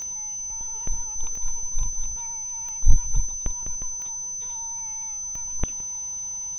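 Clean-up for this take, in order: de-click; band-stop 6.1 kHz, Q 30; inverse comb 167 ms -21 dB

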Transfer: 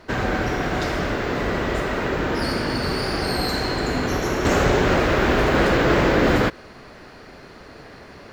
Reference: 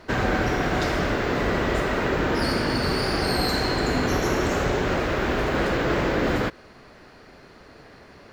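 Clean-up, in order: gain correction -5.5 dB, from 4.45 s

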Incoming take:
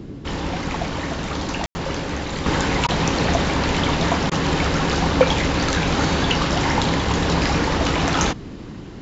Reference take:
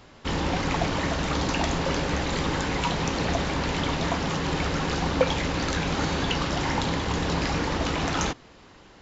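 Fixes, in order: room tone fill 1.66–1.75 s; interpolate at 2.87/4.30 s, 14 ms; noise print and reduce 6 dB; trim 0 dB, from 2.46 s -6.5 dB

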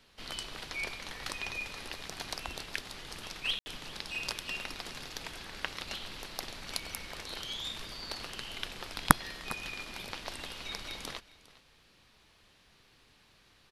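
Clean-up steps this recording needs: room tone fill 3.59–3.66 s; inverse comb 405 ms -19.5 dB

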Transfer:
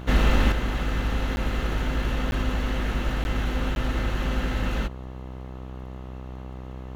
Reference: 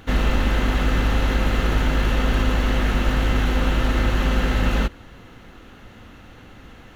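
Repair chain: de-click; de-hum 63.9 Hz, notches 20; interpolate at 1.36/2.31/3.24/3.75 s, 11 ms; gain correction +6.5 dB, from 0.52 s

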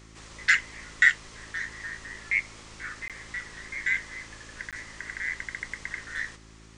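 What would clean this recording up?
de-hum 54.4 Hz, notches 7; interpolate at 3.08/4.71 s, 17 ms

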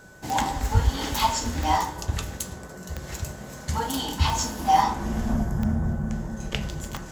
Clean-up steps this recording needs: de-click; band-stop 1.5 kHz, Q 30

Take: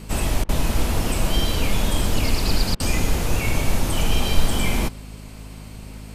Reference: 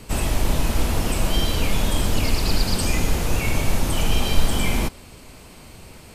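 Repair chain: de-hum 52.5 Hz, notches 5; interpolate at 0.44/2.75 s, 48 ms

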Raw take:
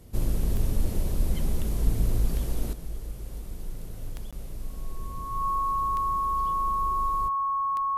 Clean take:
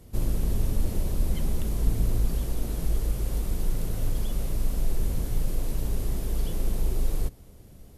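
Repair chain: de-click; band-stop 1.1 kHz, Q 30; interpolate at 4.31 s, 16 ms; gain correction +9.5 dB, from 2.73 s

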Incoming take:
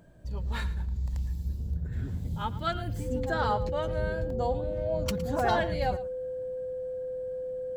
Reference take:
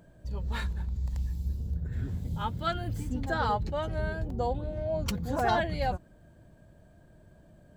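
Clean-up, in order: band-stop 510 Hz, Q 30; inverse comb 112 ms -16 dB

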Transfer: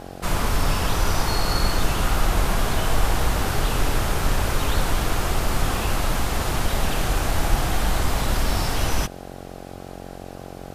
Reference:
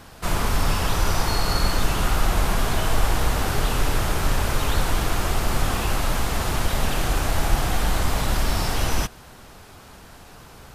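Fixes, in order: de-hum 45.5 Hz, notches 18

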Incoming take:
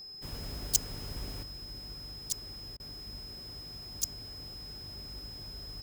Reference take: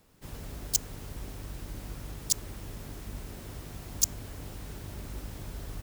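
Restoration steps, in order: de-hum 395.2 Hz, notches 7; band-stop 5.1 kHz, Q 30; interpolate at 2.77 s, 27 ms; gain correction +7.5 dB, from 1.43 s

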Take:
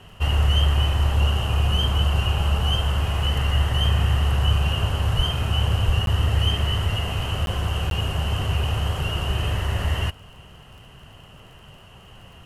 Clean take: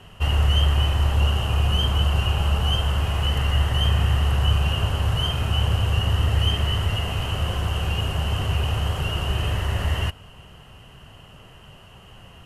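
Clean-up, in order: de-click; 5.16–5.28 s: high-pass 140 Hz 24 dB/octave; 5.85–5.97 s: high-pass 140 Hz 24 dB/octave; interpolate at 6.06/7.46/7.90 s, 12 ms

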